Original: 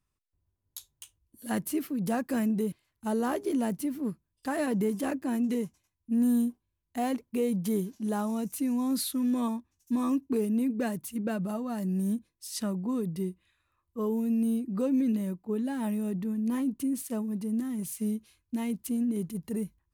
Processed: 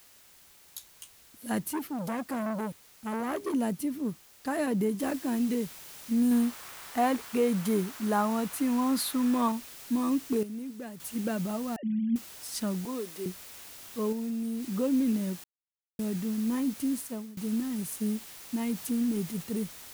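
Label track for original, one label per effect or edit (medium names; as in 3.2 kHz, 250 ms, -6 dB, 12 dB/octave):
1.710000	3.540000	transformer saturation saturates under 1 kHz
5.000000	5.000000	noise floor step -57 dB -47 dB
6.310000	9.520000	peaking EQ 1.2 kHz +9.5 dB 1.9 oct
10.430000	11.000000	gain -10.5 dB
11.760000	12.160000	formants replaced by sine waves
12.850000	13.260000	high-pass 300 Hz 24 dB/octave
14.120000	14.720000	compression, threshold -30 dBFS
15.440000	15.990000	mute
16.970000	17.370000	fade out, to -20.5 dB
18.600000	19.430000	jump at every zero crossing of -47.5 dBFS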